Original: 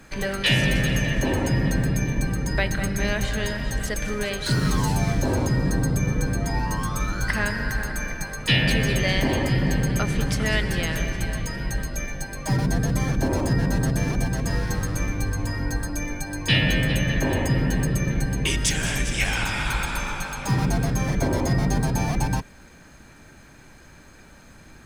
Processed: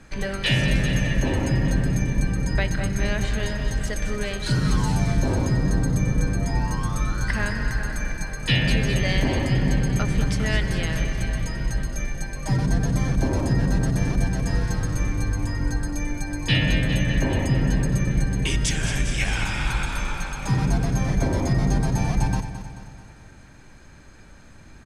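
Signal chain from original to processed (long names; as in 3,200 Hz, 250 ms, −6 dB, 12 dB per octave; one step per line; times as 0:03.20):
low-pass filter 10,000 Hz 12 dB per octave
low-shelf EQ 130 Hz +6.5 dB
repeating echo 218 ms, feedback 52%, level −11 dB
level −2.5 dB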